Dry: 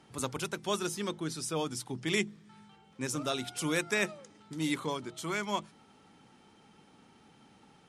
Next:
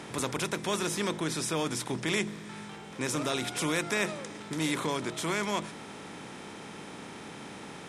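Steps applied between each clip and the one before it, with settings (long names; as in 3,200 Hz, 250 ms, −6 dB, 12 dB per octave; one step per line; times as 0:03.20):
compressor on every frequency bin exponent 0.6
in parallel at +2 dB: brickwall limiter −22.5 dBFS, peak gain reduction 9.5 dB
on the sum: level −6 dB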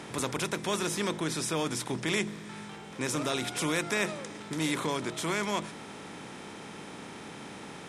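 no processing that can be heard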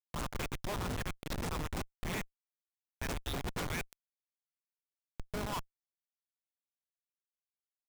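auto-filter high-pass saw up 1.5 Hz 600–3,900 Hz
time-frequency box erased 0:03.85–0:05.33, 210–6,500 Hz
comparator with hysteresis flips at −27.5 dBFS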